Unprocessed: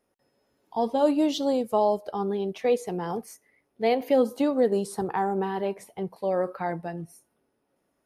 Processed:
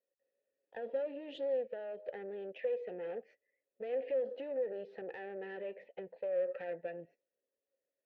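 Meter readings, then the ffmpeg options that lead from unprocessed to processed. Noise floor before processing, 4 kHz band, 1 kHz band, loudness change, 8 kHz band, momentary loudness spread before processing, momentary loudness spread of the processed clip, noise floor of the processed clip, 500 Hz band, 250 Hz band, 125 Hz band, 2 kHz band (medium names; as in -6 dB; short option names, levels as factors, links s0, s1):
-75 dBFS, under -15 dB, -23.5 dB, -13.0 dB, under -35 dB, 12 LU, 11 LU, under -85 dBFS, -11.0 dB, -23.5 dB, under -20 dB, -10.5 dB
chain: -filter_complex "[0:a]lowpass=f=3400:w=0.5412,lowpass=f=3400:w=1.3066,agate=range=0.178:threshold=0.00398:ratio=16:detection=peak,alimiter=limit=0.0708:level=0:latency=1:release=27,acompressor=threshold=0.0178:ratio=3,aeval=exprs='(tanh(50.1*val(0)+0.6)-tanh(0.6))/50.1':c=same,asplit=3[s0][s1][s2];[s0]bandpass=f=530:t=q:w=8,volume=1[s3];[s1]bandpass=f=1840:t=q:w=8,volume=0.501[s4];[s2]bandpass=f=2480:t=q:w=8,volume=0.355[s5];[s3][s4][s5]amix=inputs=3:normalize=0,volume=3.35"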